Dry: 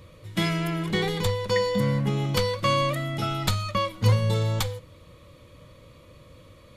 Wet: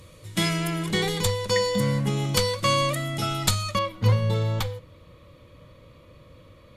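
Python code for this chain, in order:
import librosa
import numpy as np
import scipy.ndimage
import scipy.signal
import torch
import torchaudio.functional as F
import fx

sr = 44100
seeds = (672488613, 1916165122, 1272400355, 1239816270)

y = fx.peak_eq(x, sr, hz=8600.0, db=fx.steps((0.0, 10.0), (3.79, -7.0)), octaves=1.6)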